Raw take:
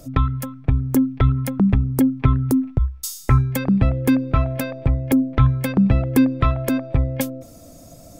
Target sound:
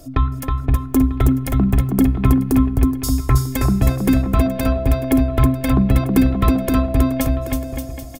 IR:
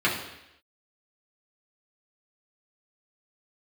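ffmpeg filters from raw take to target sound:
-filter_complex "[0:a]equalizer=f=2.1k:t=o:w=0.77:g=-2.5,aecho=1:1:2.8:0.47,aecho=1:1:320|576|780.8|944.6|1076:0.631|0.398|0.251|0.158|0.1,asplit=2[a][b];[1:a]atrim=start_sample=2205,highshelf=f=12k:g=-8.5[c];[b][c]afir=irnorm=-1:irlink=0,volume=-25.5dB[d];[a][d]amix=inputs=2:normalize=0"

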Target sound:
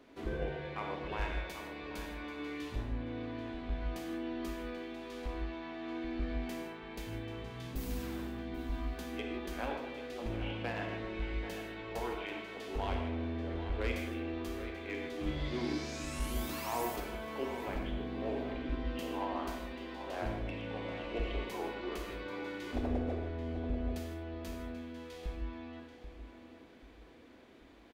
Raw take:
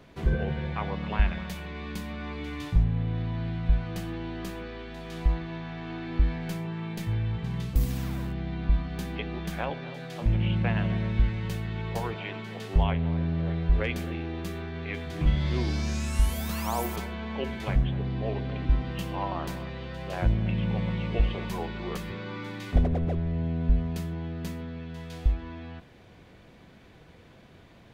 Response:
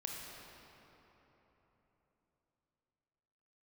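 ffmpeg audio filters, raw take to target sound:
-filter_complex "[0:a]lowshelf=f=210:t=q:w=3:g=-8,aeval=exprs='clip(val(0),-1,0.0596)':c=same,asettb=1/sr,asplit=3[a][b][c];[a]atrim=end=17.004[d];[b]atrim=start=17:end=17.73,asetpts=PTS-STARTPTS,afade=t=in:d=0.004:c=qsin,afade=t=out:st=0.726:d=0.004:c=qsin,acrossover=split=2900[e][f];[f]acompressor=threshold=-53dB:ratio=4:attack=1:release=60[g];[e][g]amix=inputs=2:normalize=0[h];[c]atrim=start=17.726[i];[d][h]acrossfade=d=0.004:c1=hsin:c2=qsin[j];[j][i]acrossfade=d=0.004:c1=qsin:c2=hsin,asplit=2[k][l];[l]adelay=786,lowpass=f=4.2k:p=1,volume=-10dB,asplit=2[m][n];[n]adelay=786,lowpass=f=4.2k:p=1,volume=0.34,asplit=2[o][p];[p]adelay=786,lowpass=f=4.2k:p=1,volume=0.34,asplit=2[q][r];[r]adelay=786,lowpass=f=4.2k:p=1,volume=0.34[s];[k][m][o][q][s]amix=inputs=5:normalize=0[t];[1:a]atrim=start_sample=2205,afade=t=out:st=0.22:d=0.01,atrim=end_sample=10143[u];[t][u]afir=irnorm=-1:irlink=0,volume=-3.5dB"

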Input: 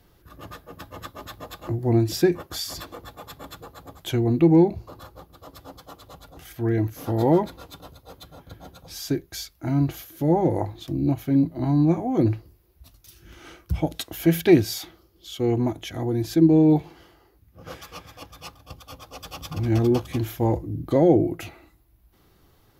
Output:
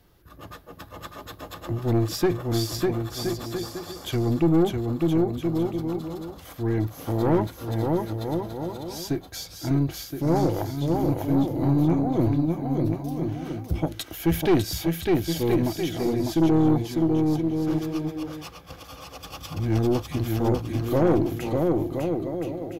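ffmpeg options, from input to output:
-af "aecho=1:1:600|1020|1314|1520|1664:0.631|0.398|0.251|0.158|0.1,aeval=exprs='(tanh(5.01*val(0)+0.4)-tanh(0.4))/5.01':c=same"

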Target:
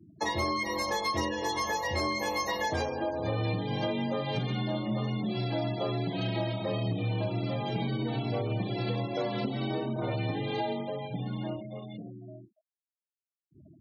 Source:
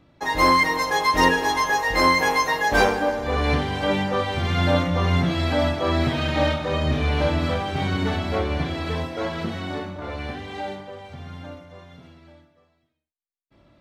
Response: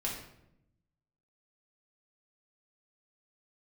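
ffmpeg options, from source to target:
-filter_complex "[0:a]equalizer=f=1.4k:t=o:w=1.4:g=-9,bandreject=f=344.1:t=h:w=4,bandreject=f=688.2:t=h:w=4,bandreject=f=1.0323k:t=h:w=4,bandreject=f=1.3764k:t=h:w=4,bandreject=f=1.7205k:t=h:w=4,bandreject=f=2.0646k:t=h:w=4,bandreject=f=2.4087k:t=h:w=4,acompressor=threshold=-32dB:ratio=20,asplit=2[a][b];[1:a]atrim=start_sample=2205,atrim=end_sample=3087[c];[b][c]afir=irnorm=-1:irlink=0,volume=-17.5dB[d];[a][d]amix=inputs=2:normalize=0,afreqshift=39,acrusher=bits=4:mode=log:mix=0:aa=0.000001,afftfilt=real='re*gte(hypot(re,im),0.00708)':imag='im*gte(hypot(re,im),0.00708)':win_size=1024:overlap=0.75,volume=4dB"

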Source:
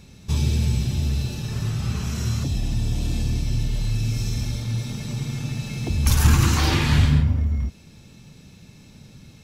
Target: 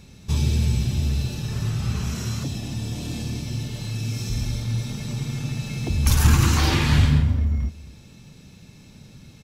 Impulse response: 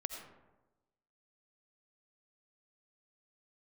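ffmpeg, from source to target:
-filter_complex "[0:a]asettb=1/sr,asplit=3[a][b][c];[a]atrim=end=2.144[d];[b]atrim=start=2.14:end=4.3,asetpts=PTS-STARTPTS,afade=t=in:d=0.004:c=qsin,afade=t=out:st=2.156:d=0.004:c=qsin,highpass=120[e];[c]atrim=start=4.296[f];[d][e]acrossfade=d=0.004:c1=hsin:c2=qsin[g];[g][f]acrossfade=d=0.004:c1=qsin:c2=hsin,aecho=1:1:253:0.106"

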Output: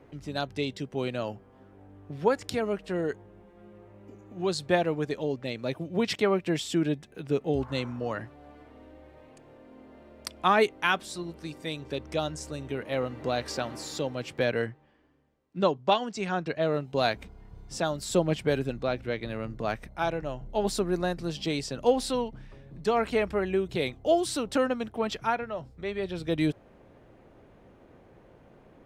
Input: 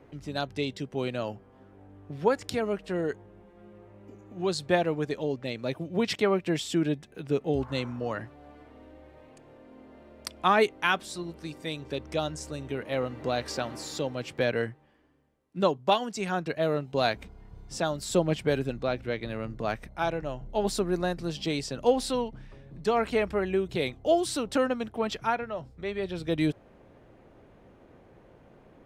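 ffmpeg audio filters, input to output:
-filter_complex "[0:a]asettb=1/sr,asplit=3[a][b][c];[a]atrim=end=14.664[d];[b]atrim=start=14.66:end=16.74,asetpts=PTS-STARTPTS,afade=t=in:d=0.004:c=qsin,afade=t=out:st=2.076:d=0.004:c=qsin,lowpass=6.5k[e];[c]atrim=start=16.736[f];[d][e]acrossfade=d=0.004:c1=hsin:c2=qsin[g];[g][f]acrossfade=d=0.004:c1=qsin:c2=hsin"

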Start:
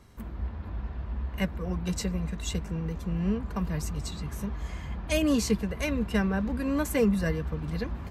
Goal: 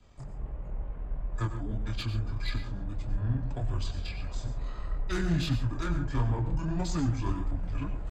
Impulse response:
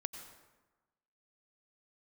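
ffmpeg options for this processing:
-filter_complex "[0:a]asubboost=boost=3:cutoff=73,flanger=delay=20:depth=8:speed=1.6,adynamicequalizer=threshold=0.00112:dfrequency=1100:dqfactor=7.4:tfrequency=1100:tqfactor=7.4:attack=5:release=100:ratio=0.375:range=2:mode=cutabove:tftype=bell,asetrate=26222,aresample=44100,atempo=1.68179,acrossover=split=180[a][b];[b]asoftclip=type=tanh:threshold=-31dB[c];[a][c]amix=inputs=2:normalize=0[d];[1:a]atrim=start_sample=2205,atrim=end_sample=6615[e];[d][e]afir=irnorm=-1:irlink=0,volume=4dB"

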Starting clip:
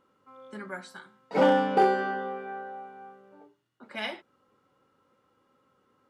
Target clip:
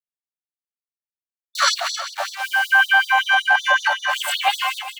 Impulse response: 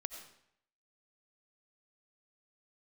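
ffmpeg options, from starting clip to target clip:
-af "areverse,asetrate=88200,aresample=44100,aecho=1:1:1.4:0.35,agate=range=-25dB:threshold=-53dB:ratio=16:detection=peak,atempo=0.61,acrusher=bits=8:mix=0:aa=0.000001,acompressor=threshold=-37dB:ratio=10,highshelf=f=4.3k:g=-11.5,aecho=1:1:219|267|395|604:0.237|0.237|0.15|0.15,alimiter=level_in=34.5dB:limit=-1dB:release=50:level=0:latency=1,afftfilt=real='re*gte(b*sr/1024,530*pow(3600/530,0.5+0.5*sin(2*PI*5.3*pts/sr)))':imag='im*gte(b*sr/1024,530*pow(3600/530,0.5+0.5*sin(2*PI*5.3*pts/sr)))':win_size=1024:overlap=0.75,volume=-4.5dB"

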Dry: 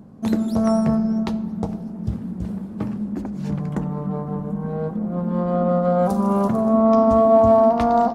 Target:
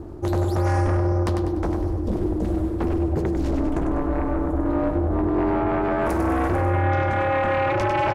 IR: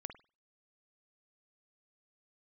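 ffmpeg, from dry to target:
-af "areverse,acompressor=threshold=-24dB:ratio=5,areverse,aeval=exprs='val(0)*sin(2*PI*130*n/s)':c=same,aeval=exprs='0.126*sin(PI/2*2.24*val(0)/0.126)':c=same,aecho=1:1:98|196|294|392|490:0.473|0.189|0.0757|0.0303|0.0121"

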